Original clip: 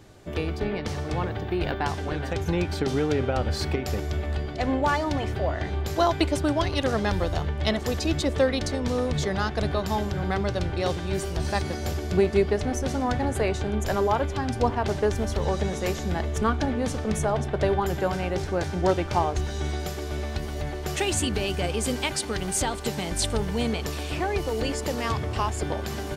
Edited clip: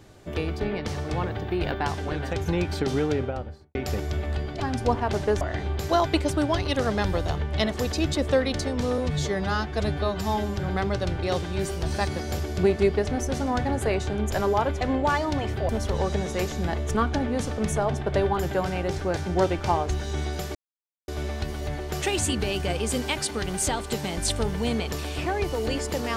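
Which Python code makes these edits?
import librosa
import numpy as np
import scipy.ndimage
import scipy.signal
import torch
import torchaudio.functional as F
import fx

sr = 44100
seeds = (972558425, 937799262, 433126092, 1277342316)

y = fx.studio_fade_out(x, sr, start_s=2.99, length_s=0.76)
y = fx.edit(y, sr, fx.swap(start_s=4.6, length_s=0.88, other_s=14.35, other_length_s=0.81),
    fx.stretch_span(start_s=9.05, length_s=1.06, factor=1.5),
    fx.insert_silence(at_s=20.02, length_s=0.53), tone=tone)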